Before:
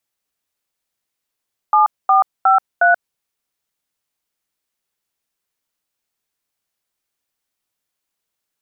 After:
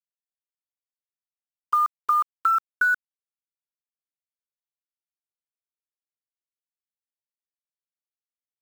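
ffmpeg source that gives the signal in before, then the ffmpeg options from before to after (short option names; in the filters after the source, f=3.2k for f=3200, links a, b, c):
-f lavfi -i "aevalsrc='0.266*clip(min(mod(t,0.361),0.132-mod(t,0.361))/0.002,0,1)*(eq(floor(t/0.361),0)*(sin(2*PI*852*mod(t,0.361))+sin(2*PI*1209*mod(t,0.361)))+eq(floor(t/0.361),1)*(sin(2*PI*770*mod(t,0.361))+sin(2*PI*1209*mod(t,0.361)))+eq(floor(t/0.361),2)*(sin(2*PI*770*mod(t,0.361))+sin(2*PI*1336*mod(t,0.361)))+eq(floor(t/0.361),3)*(sin(2*PI*697*mod(t,0.361))+sin(2*PI*1477*mod(t,0.361))))':d=1.444:s=44100"
-af "afftfilt=real='re*(1-between(b*sr/4096,460,1000))':imag='im*(1-between(b*sr/4096,460,1000))':win_size=4096:overlap=0.75,acompressor=threshold=-18dB:ratio=12,acrusher=bits=6:mix=0:aa=0.000001"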